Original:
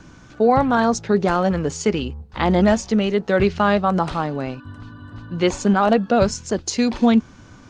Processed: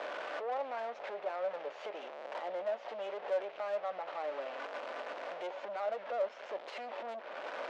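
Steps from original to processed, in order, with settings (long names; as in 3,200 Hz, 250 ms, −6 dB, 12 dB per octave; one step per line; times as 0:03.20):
linear delta modulator 64 kbit/s, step −23 dBFS
low-pass filter 2,900 Hz 24 dB per octave
downward compressor 2.5 to 1, threshold −26 dBFS, peak gain reduction 10.5 dB
brickwall limiter −19 dBFS, peak gain reduction 8 dB
tube saturation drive 29 dB, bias 0.45
four-pole ladder high-pass 530 Hz, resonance 65%
level +3.5 dB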